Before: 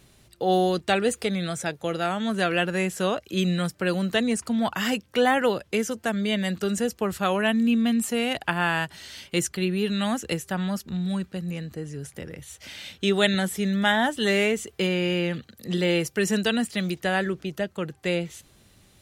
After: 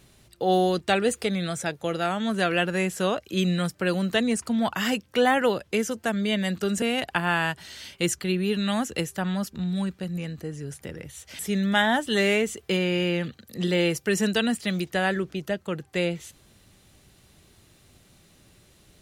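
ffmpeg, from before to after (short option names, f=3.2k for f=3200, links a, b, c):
-filter_complex "[0:a]asplit=3[a][b][c];[a]atrim=end=6.822[d];[b]atrim=start=8.148:end=12.722[e];[c]atrim=start=13.488[f];[d][e]acrossfade=d=0.004:c1=hsin:c2=hsin[g];[g][f]acrossfade=d=0.004:c1=hsin:c2=hsin"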